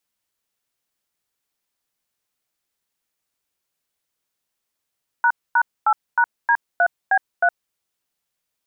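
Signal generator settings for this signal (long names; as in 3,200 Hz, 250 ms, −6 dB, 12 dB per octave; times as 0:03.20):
touch tones "##8#D3B3", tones 65 ms, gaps 247 ms, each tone −15.5 dBFS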